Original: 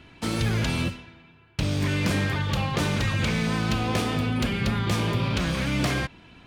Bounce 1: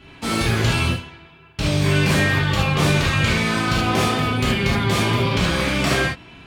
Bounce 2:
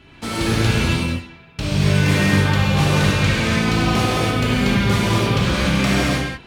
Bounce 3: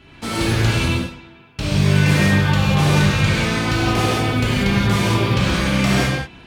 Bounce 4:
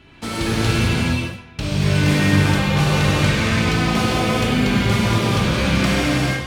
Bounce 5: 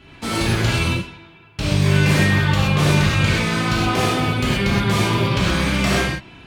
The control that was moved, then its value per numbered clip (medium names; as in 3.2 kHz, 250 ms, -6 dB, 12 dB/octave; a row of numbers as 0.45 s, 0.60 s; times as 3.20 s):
gated-style reverb, gate: 100 ms, 330 ms, 220 ms, 490 ms, 150 ms